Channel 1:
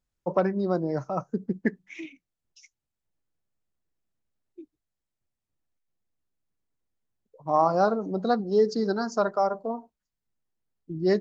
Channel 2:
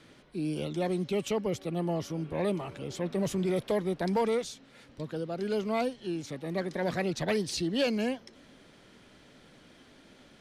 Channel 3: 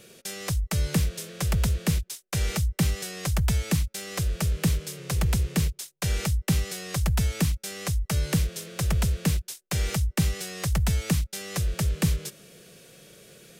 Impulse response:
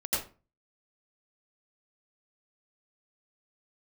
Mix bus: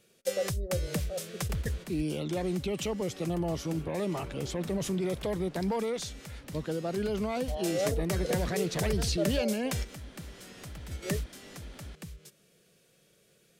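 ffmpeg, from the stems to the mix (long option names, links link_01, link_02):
-filter_complex "[0:a]flanger=delay=3.5:depth=2:regen=45:speed=0.47:shape=sinusoidal,asplit=3[link_01][link_02][link_03];[link_01]bandpass=frequency=530:width_type=q:width=8,volume=0dB[link_04];[link_02]bandpass=frequency=1840:width_type=q:width=8,volume=-6dB[link_05];[link_03]bandpass=frequency=2480:width_type=q:width=8,volume=-9dB[link_06];[link_04][link_05][link_06]amix=inputs=3:normalize=0,volume=3dB,asplit=2[link_07][link_08];[1:a]acompressor=mode=upward:threshold=-50dB:ratio=2.5,alimiter=level_in=3dB:limit=-24dB:level=0:latency=1:release=44,volume=-3dB,adelay=1550,volume=3dB[link_09];[2:a]acompressor=threshold=-29dB:ratio=2.5,volume=-2.5dB[link_10];[link_08]apad=whole_len=599687[link_11];[link_10][link_11]sidechaingate=range=-12dB:threshold=-55dB:ratio=16:detection=peak[link_12];[link_07][link_09][link_12]amix=inputs=3:normalize=0"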